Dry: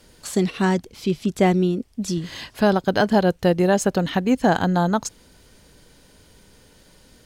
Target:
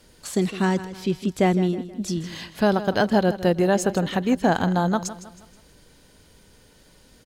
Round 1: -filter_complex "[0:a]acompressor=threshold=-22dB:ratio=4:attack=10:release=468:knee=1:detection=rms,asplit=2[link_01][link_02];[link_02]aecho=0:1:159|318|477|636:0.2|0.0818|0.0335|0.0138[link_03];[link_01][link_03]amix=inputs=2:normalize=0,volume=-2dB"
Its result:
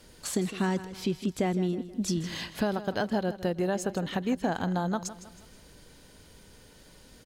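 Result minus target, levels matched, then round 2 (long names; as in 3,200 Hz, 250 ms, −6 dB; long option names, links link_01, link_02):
downward compressor: peak gain reduction +10.5 dB
-filter_complex "[0:a]asplit=2[link_01][link_02];[link_02]aecho=0:1:159|318|477|636:0.2|0.0818|0.0335|0.0138[link_03];[link_01][link_03]amix=inputs=2:normalize=0,volume=-2dB"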